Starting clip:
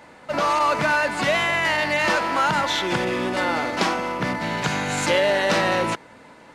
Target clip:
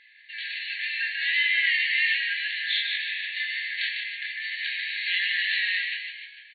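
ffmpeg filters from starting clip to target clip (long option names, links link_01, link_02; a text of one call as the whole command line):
ffmpeg -i in.wav -filter_complex "[0:a]flanger=delay=19:depth=5.6:speed=0.35,asplit=7[link_01][link_02][link_03][link_04][link_05][link_06][link_07];[link_02]adelay=150,afreqshift=91,volume=-5.5dB[link_08];[link_03]adelay=300,afreqshift=182,volume=-11.5dB[link_09];[link_04]adelay=450,afreqshift=273,volume=-17.5dB[link_10];[link_05]adelay=600,afreqshift=364,volume=-23.6dB[link_11];[link_06]adelay=750,afreqshift=455,volume=-29.6dB[link_12];[link_07]adelay=900,afreqshift=546,volume=-35.6dB[link_13];[link_01][link_08][link_09][link_10][link_11][link_12][link_13]amix=inputs=7:normalize=0,afftfilt=real='re*between(b*sr/4096,1600,4500)':imag='im*between(b*sr/4096,1600,4500)':win_size=4096:overlap=0.75,volume=2dB" out.wav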